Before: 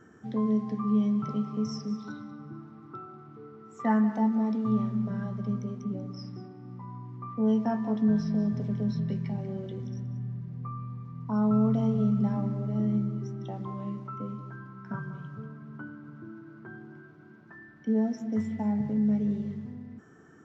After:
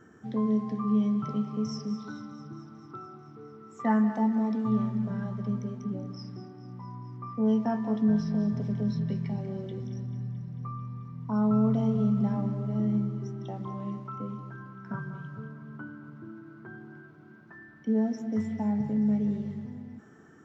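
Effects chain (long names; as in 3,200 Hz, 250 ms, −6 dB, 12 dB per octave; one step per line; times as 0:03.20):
feedback echo with a high-pass in the loop 220 ms, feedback 74%, high-pass 420 Hz, level −15.5 dB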